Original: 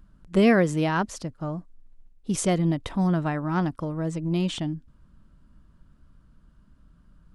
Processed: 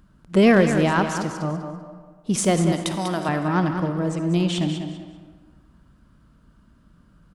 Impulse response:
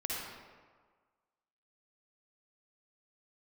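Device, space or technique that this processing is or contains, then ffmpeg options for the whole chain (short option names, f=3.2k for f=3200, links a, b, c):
saturated reverb return: -filter_complex "[0:a]highpass=f=99:p=1,asettb=1/sr,asplit=3[a][b][c];[a]atrim=end=2.724[d];[b]atrim=start=2.72:end=3.29,asetpts=PTS-STARTPTS,afade=t=in:d=0.004:c=qsin,afade=t=out:st=0.566:d=0.004:c=qsin,bass=f=250:g=-15,treble=f=4k:g=14[e];[c]atrim=start=3.286[f];[d][e]acrossfade=d=0.004:c1=hsin:c2=qsin[g];[g][f]acrossfade=d=0.004:c1=qsin:c2=hsin,aecho=1:1:195|390|585:0.355|0.0852|0.0204,asplit=2[h][i];[1:a]atrim=start_sample=2205[j];[i][j]afir=irnorm=-1:irlink=0,asoftclip=type=tanh:threshold=-22dB,volume=-6.5dB[k];[h][k]amix=inputs=2:normalize=0,volume=2.5dB"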